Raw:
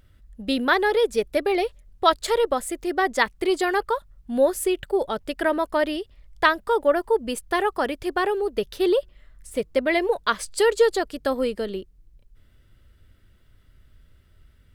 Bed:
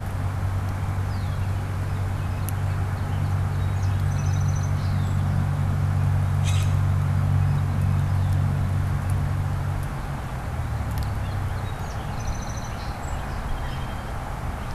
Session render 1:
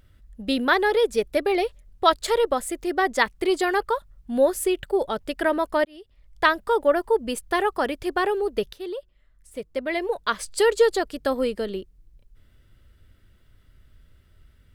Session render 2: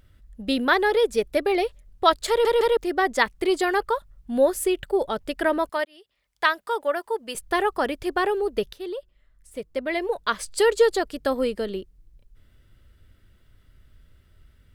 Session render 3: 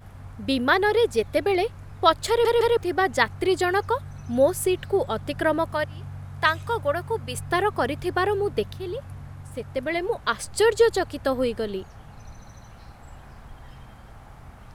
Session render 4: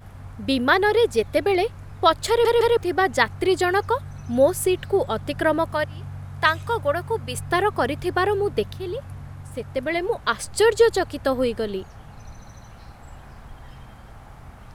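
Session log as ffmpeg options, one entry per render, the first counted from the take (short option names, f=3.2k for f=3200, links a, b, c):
-filter_complex "[0:a]asplit=3[a][b][c];[a]atrim=end=5.85,asetpts=PTS-STARTPTS,afade=t=out:st=5.846:d=0.004:c=hsin[d];[b]atrim=start=5.85:end=8.73,asetpts=PTS-STARTPTS,afade=t=in:d=0.66,afade=t=out:st=2.876:d=0.004:c=hsin:silence=0.237137[e];[c]atrim=start=8.73,asetpts=PTS-STARTPTS,afade=t=in:d=1.84:c=qua:silence=0.237137[f];[d][e][f]concat=n=3:v=0:a=1"
-filter_complex "[0:a]asettb=1/sr,asplit=3[a][b][c];[a]atrim=end=5.694[d];[b]atrim=start=5.69:end=7.35,asetpts=PTS-STARTPTS,afade=t=in:d=0.004:c=qsin,afade=t=out:st=1.656:d=0.004:c=qsin,highpass=f=900:p=1[e];[c]atrim=start=7.346[f];[d][e]acrossfade=d=0.004:c1=hsin:c2=qsin[g];[g][f]acrossfade=d=0.004:c1=qsin:c2=hsin,asplit=4[h][i][j][k];[h]atrim=end=2.452[l];[i]atrim=start=2.288:end=2.452[m];[j]atrim=start=2.288:end=2.452[n];[k]atrim=start=2.768[o];[l][m]acrossfade=d=0.004:c1=hsin:c2=hsin[p];[p][n]acrossfade=d=0.004:c1=hsin:c2=hsin[q];[q][o]acrossfade=d=0.004:c1=hsin:c2=hsin"
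-filter_complex "[1:a]volume=-15.5dB[a];[0:a][a]amix=inputs=2:normalize=0"
-af "volume=2dB,alimiter=limit=-3dB:level=0:latency=1"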